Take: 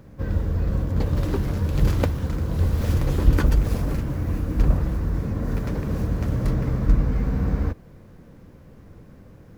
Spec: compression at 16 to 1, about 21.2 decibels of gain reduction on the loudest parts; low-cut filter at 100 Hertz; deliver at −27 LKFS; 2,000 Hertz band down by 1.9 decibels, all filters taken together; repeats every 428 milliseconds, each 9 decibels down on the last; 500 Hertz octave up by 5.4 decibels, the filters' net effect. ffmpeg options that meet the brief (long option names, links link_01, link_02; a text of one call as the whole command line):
ffmpeg -i in.wav -af "highpass=100,equalizer=frequency=500:width_type=o:gain=6.5,equalizer=frequency=2000:width_type=o:gain=-3,acompressor=threshold=-37dB:ratio=16,aecho=1:1:428|856|1284|1712:0.355|0.124|0.0435|0.0152,volume=14.5dB" out.wav